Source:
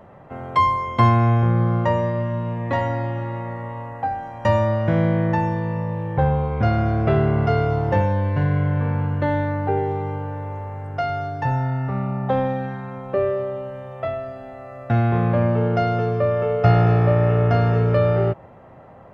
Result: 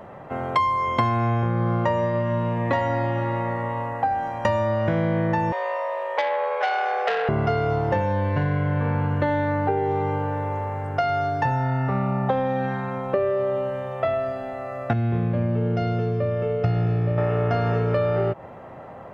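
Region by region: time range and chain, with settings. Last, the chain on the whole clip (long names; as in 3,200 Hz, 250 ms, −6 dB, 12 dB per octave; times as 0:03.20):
0:05.52–0:07.29: frequency shifter +59 Hz + linear-phase brick-wall high-pass 410 Hz + saturating transformer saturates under 1,800 Hz
0:14.93–0:17.18: low-pass filter 2,800 Hz 6 dB per octave + parametric band 1,000 Hz −14 dB 2.3 octaves
whole clip: low-shelf EQ 170 Hz −7 dB; downward compressor, threshold −25 dBFS; level +6 dB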